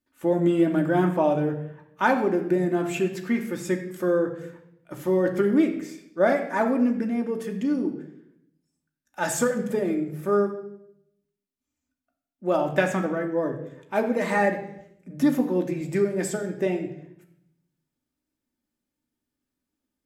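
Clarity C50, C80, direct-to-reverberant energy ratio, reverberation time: 9.0 dB, 11.5 dB, 2.0 dB, 0.75 s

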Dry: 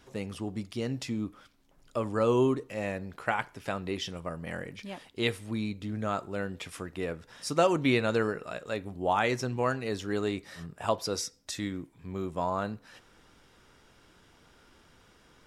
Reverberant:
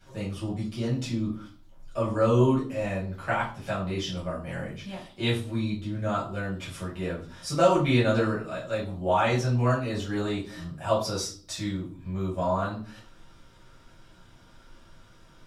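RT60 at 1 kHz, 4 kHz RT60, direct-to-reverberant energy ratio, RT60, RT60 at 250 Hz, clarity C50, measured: 0.40 s, 0.40 s, -9.5 dB, 0.40 s, 0.65 s, 7.0 dB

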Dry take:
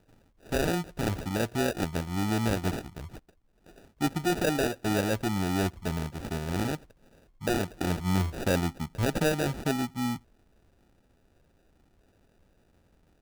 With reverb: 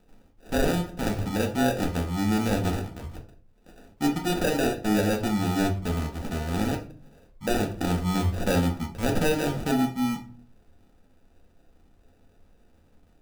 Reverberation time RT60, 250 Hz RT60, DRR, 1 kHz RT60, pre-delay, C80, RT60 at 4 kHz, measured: 0.45 s, 0.65 s, 1.5 dB, 0.40 s, 4 ms, 16.0 dB, 0.30 s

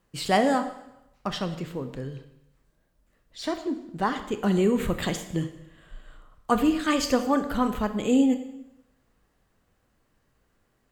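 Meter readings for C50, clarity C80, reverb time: 10.5 dB, 13.0 dB, 0.85 s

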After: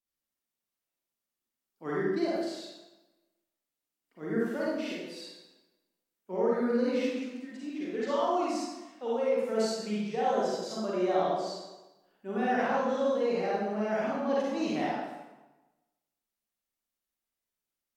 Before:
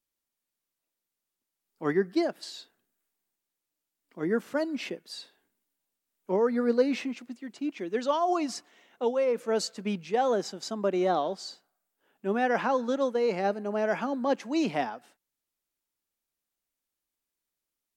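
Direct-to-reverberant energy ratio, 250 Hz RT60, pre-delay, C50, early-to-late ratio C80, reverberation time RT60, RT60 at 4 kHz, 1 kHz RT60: -7.5 dB, 1.1 s, 38 ms, -3.5 dB, 1.0 dB, 1.1 s, 0.85 s, 1.1 s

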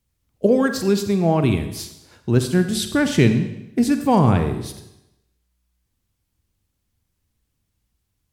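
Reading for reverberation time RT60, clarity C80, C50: 0.85 s, 11.0 dB, 9.0 dB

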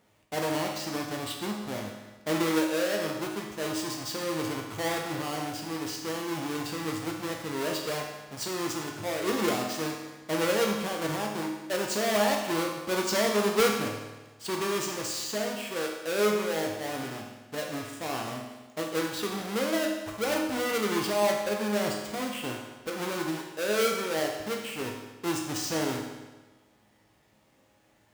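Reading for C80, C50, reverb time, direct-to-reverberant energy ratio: 5.5 dB, 3.0 dB, 1.2 s, 0.0 dB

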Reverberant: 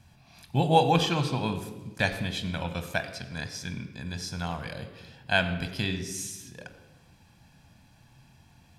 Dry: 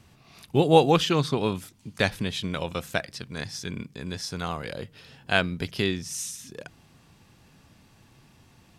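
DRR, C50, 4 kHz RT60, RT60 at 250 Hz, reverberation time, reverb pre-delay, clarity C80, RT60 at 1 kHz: 7.5 dB, 10.0 dB, 0.90 s, 1.7 s, 1.2 s, 6 ms, 11.0 dB, 1.1 s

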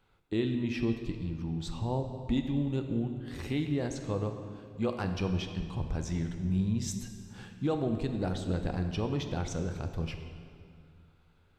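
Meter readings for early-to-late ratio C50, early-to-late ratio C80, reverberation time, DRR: 7.0 dB, 8.0 dB, 2.2 s, 5.5 dB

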